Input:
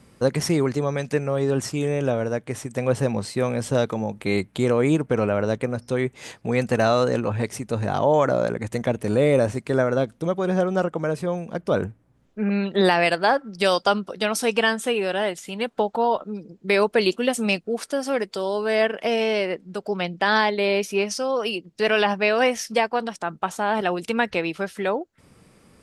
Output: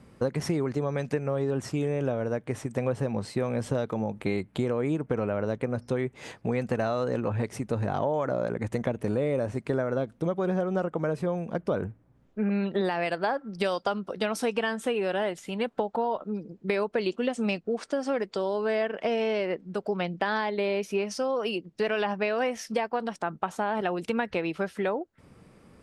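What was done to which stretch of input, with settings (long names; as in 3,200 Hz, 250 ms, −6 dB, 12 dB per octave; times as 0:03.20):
0:16.88–0:19.70: low-pass filter 8,400 Hz 24 dB per octave
whole clip: high-shelf EQ 3,000 Hz −9.5 dB; downward compressor, threshold −24 dBFS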